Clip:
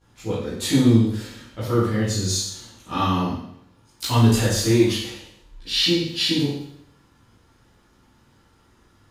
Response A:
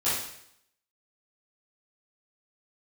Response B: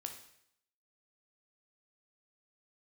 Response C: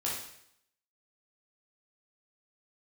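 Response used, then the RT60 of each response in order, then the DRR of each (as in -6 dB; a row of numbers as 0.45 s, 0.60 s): A; 0.70 s, 0.70 s, 0.70 s; -13.0 dB, 4.0 dB, -5.5 dB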